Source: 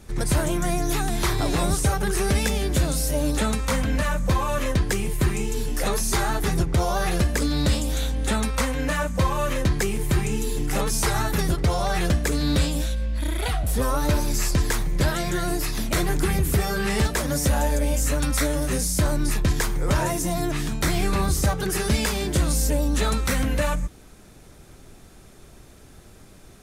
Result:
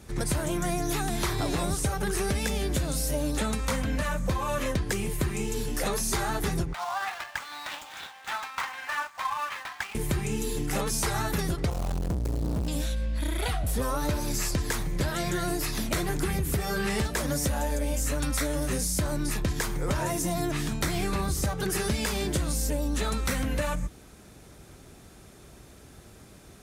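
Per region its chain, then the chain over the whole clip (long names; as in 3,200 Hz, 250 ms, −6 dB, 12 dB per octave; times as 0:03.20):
0:06.73–0:09.95: running median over 9 samples + Butterworth high-pass 760 Hz 48 dB per octave + windowed peak hold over 3 samples
0:11.70–0:12.68: running median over 25 samples + bass and treble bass +11 dB, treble +14 dB + tube saturation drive 20 dB, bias 0.7
whole clip: high-pass filter 44 Hz; downward compressor, threshold −23 dBFS; level −1 dB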